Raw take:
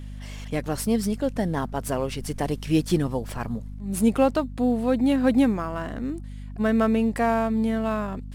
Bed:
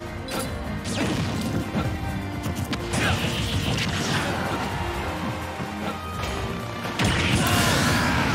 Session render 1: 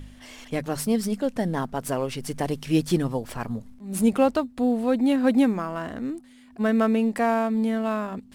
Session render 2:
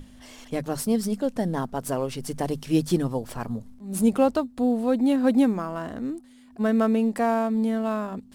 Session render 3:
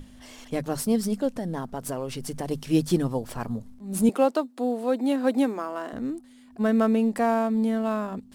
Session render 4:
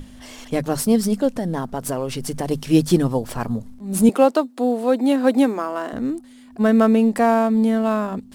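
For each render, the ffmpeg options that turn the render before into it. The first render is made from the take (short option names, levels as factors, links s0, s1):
-af "bandreject=f=50:t=h:w=4,bandreject=f=100:t=h:w=4,bandreject=f=150:t=h:w=4,bandreject=f=200:t=h:w=4"
-af "equalizer=f=2200:w=1.1:g=-5,bandreject=f=50:t=h:w=6,bandreject=f=100:t=h:w=6,bandreject=f=150:t=h:w=6"
-filter_complex "[0:a]asettb=1/sr,asplit=3[s0][s1][s2];[s0]atrim=end=1.284[s3];[s1]atrim=start=1.28:end=2.51,asetpts=PTS-STARTPTS,afade=t=in:d=0.004:c=qsin,afade=t=out:st=1.226:d=0.004:c=qsin,acompressor=threshold=0.0398:ratio=2.5:attack=3.2:release=140:knee=1:detection=peak[s4];[s2]atrim=start=2.506[s5];[s3][s4]acrossfade=d=0.004:c1=hsin:c2=qsin[s6];[s6][s5]acrossfade=d=0.004:c1=qsin:c2=hsin,asettb=1/sr,asplit=3[s7][s8][s9];[s7]atrim=end=4.094[s10];[s8]atrim=start=4.09:end=5.93,asetpts=PTS-STARTPTS,afade=t=in:d=0.004:c=qsin,afade=t=out:st=1.836:d=0.004:c=qsin,highpass=f=280:w=0.5412,highpass=f=280:w=1.3066[s11];[s9]atrim=start=5.926[s12];[s10][s11]acrossfade=d=0.004:c1=hsin:c2=qsin[s13];[s13][s12]acrossfade=d=0.004:c1=qsin:c2=hsin"
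-af "volume=2.11"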